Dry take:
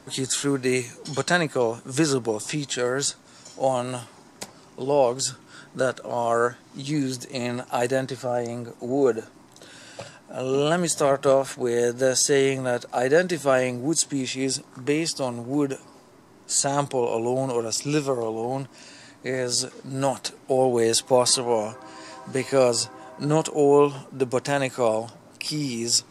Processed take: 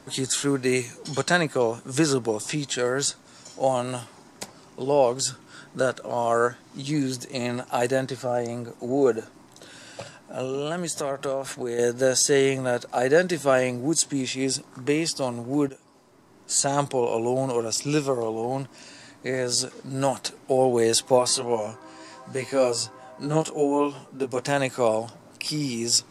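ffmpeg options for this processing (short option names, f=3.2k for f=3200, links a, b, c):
-filter_complex "[0:a]asettb=1/sr,asplit=3[a][b][c];[a]atrim=end=10.454[d];[b]atrim=start=10.45:end=11.79,asetpts=PTS-STARTPTS,afade=t=in:d=0.004:c=qsin,afade=t=out:st=1.336:d=0.004:c=qsin,acompressor=threshold=-27dB:ratio=2.5:attack=3.2:release=140:knee=1:detection=peak[e];[c]atrim=start=11.786[f];[d][e]acrossfade=d=0.004:c1=hsin:c2=qsin[g];[g][f]acrossfade=d=0.004:c1=qsin:c2=hsin,asplit=3[h][i][j];[h]afade=t=out:st=21.18:d=0.02[k];[i]flanger=delay=17:depth=2.1:speed=1.3,afade=t=in:st=21.18:d=0.02,afade=t=out:st=24.39:d=0.02[l];[j]afade=t=in:st=24.39:d=0.02[m];[k][l][m]amix=inputs=3:normalize=0,asplit=2[n][o];[n]atrim=end=15.69,asetpts=PTS-STARTPTS,afade=t=out:st=15.686:d=0.004:c=hsin:silence=0.223872[p];[o]atrim=start=15.69,asetpts=PTS-STARTPTS,afade=t=in:d=0.93:silence=0.223872[q];[p][q]concat=n=2:v=0:a=1"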